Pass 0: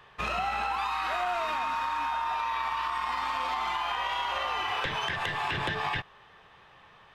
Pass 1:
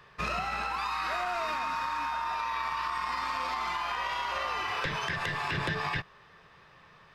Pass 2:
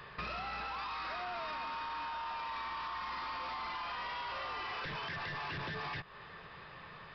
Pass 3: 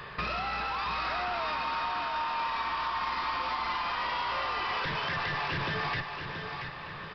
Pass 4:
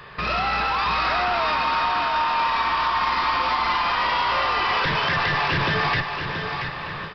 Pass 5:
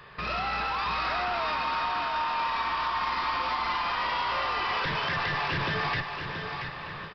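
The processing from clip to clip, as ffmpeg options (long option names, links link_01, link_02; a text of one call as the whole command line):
ffmpeg -i in.wav -af "equalizer=frequency=160:width_type=o:width=0.33:gain=6,equalizer=frequency=800:width_type=o:width=0.33:gain=-7,equalizer=frequency=3150:width_type=o:width=0.33:gain=-6,equalizer=frequency=5000:width_type=o:width=0.33:gain=6" out.wav
ffmpeg -i in.wav -af "aresample=11025,asoftclip=type=tanh:threshold=-33.5dB,aresample=44100,acompressor=threshold=-45dB:ratio=6,volume=5.5dB" out.wav
ffmpeg -i in.wav -af "aecho=1:1:680|1360|2040|2720|3400:0.447|0.179|0.0715|0.0286|0.0114,volume=7.5dB" out.wav
ffmpeg -i in.wav -af "dynaudnorm=framelen=150:gausssize=3:maxgain=10dB" out.wav
ffmpeg -i in.wav -filter_complex "[0:a]asplit=2[link_01][link_02];[link_02]adelay=270,highpass=300,lowpass=3400,asoftclip=type=hard:threshold=-22.5dB,volume=-28dB[link_03];[link_01][link_03]amix=inputs=2:normalize=0,volume=-7dB" out.wav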